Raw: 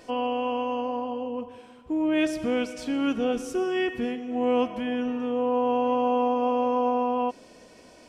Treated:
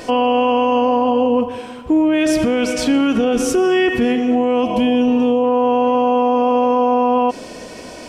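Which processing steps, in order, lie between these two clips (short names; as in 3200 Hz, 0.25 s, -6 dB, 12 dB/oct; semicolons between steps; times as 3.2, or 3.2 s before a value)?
4.63–5.44 band shelf 1600 Hz -11 dB 1 oct; maximiser +24.5 dB; gain -7 dB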